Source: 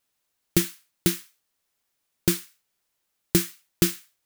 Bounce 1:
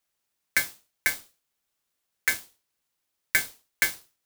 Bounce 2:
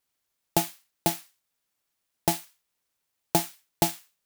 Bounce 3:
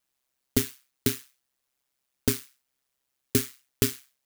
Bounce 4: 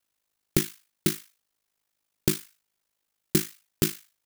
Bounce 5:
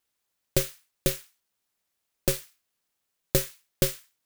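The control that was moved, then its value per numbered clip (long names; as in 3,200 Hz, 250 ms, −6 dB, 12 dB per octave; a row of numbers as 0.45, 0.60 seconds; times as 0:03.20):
ring modulation, frequency: 1,900, 510, 66, 26, 200 Hertz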